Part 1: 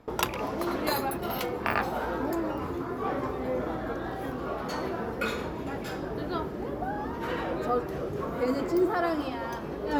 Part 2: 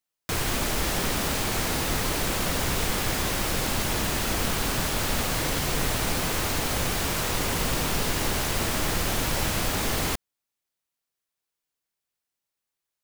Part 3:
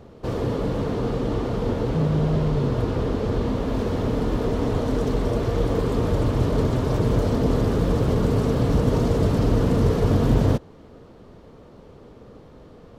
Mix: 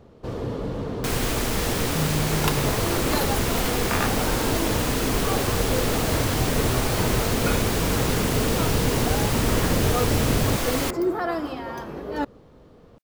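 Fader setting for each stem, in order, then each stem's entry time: +1.0, 0.0, -4.5 dB; 2.25, 0.75, 0.00 s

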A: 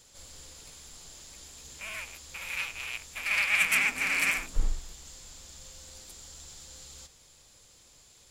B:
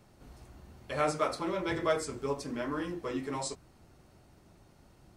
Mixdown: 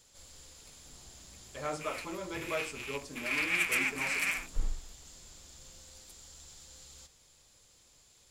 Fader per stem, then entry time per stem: -5.0, -7.0 dB; 0.00, 0.65 s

